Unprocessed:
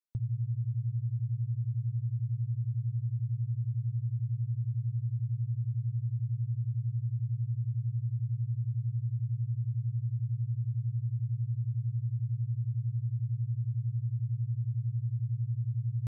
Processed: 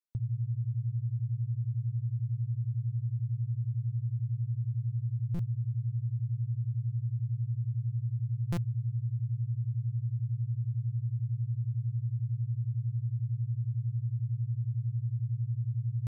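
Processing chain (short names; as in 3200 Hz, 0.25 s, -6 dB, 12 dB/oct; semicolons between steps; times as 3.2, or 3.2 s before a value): stuck buffer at 5.34/8.52, samples 256, times 8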